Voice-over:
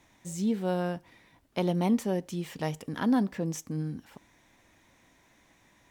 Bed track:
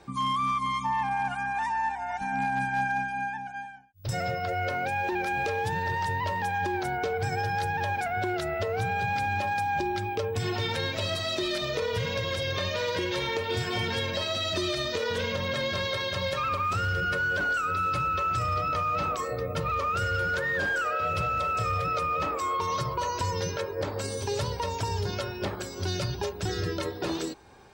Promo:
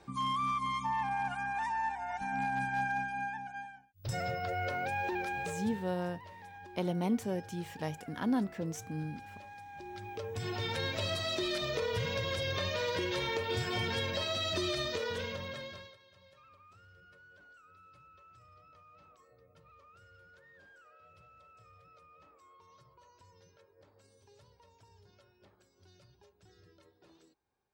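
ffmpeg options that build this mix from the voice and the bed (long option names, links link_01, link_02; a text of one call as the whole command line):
ffmpeg -i stem1.wav -i stem2.wav -filter_complex "[0:a]adelay=5200,volume=-5.5dB[link_01];[1:a]volume=11.5dB,afade=type=out:start_time=5.11:duration=0.81:silence=0.158489,afade=type=in:start_time=9.73:duration=1.17:silence=0.141254,afade=type=out:start_time=14.8:duration=1.17:silence=0.0421697[link_02];[link_01][link_02]amix=inputs=2:normalize=0" out.wav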